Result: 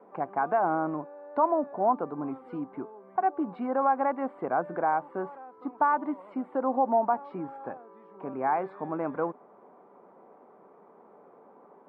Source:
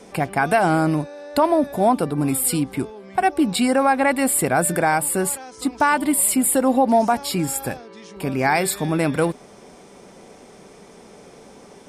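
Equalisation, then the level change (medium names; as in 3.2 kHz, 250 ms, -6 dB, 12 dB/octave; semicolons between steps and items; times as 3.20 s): high-pass 260 Hz 12 dB/octave; four-pole ladder low-pass 1.3 kHz, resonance 45%; -1.5 dB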